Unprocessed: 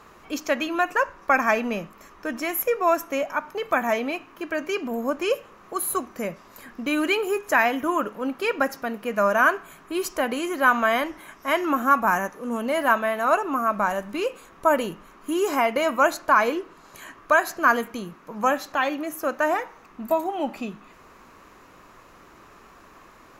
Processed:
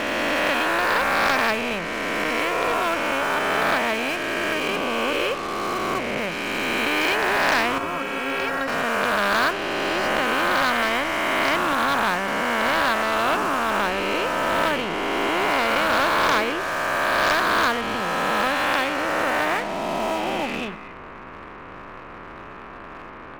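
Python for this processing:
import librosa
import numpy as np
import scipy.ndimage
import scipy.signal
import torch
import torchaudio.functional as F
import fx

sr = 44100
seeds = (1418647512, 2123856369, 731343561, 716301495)

y = fx.spec_swells(x, sr, rise_s=2.42)
y = scipy.signal.sosfilt(scipy.signal.butter(4, 2800.0, 'lowpass', fs=sr, output='sos'), y)
y = fx.leveller(y, sr, passes=1)
y = fx.stiff_resonator(y, sr, f0_hz=81.0, decay_s=0.2, stiffness=0.03, at=(7.78, 8.68))
y = fx.spectral_comp(y, sr, ratio=2.0)
y = F.gain(torch.from_numpy(y), -7.0).numpy()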